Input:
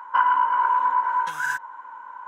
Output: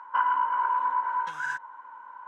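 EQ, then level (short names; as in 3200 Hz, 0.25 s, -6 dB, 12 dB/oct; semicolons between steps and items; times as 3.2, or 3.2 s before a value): air absorption 74 m; -5.0 dB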